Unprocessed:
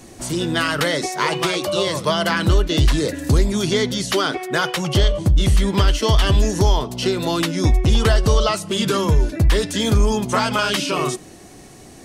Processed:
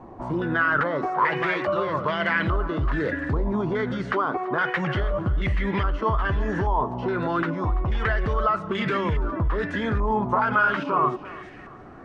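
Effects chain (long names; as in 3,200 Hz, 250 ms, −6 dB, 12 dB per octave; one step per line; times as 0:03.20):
0:07.54–0:08.08: parametric band 260 Hz −8 dB 1.6 octaves
brickwall limiter −15 dBFS, peak gain reduction 8.5 dB
feedback echo with a high-pass in the loop 336 ms, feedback 31%, high-pass 420 Hz, level −13 dB
low-pass on a step sequencer 2.4 Hz 980–2,000 Hz
level −2.5 dB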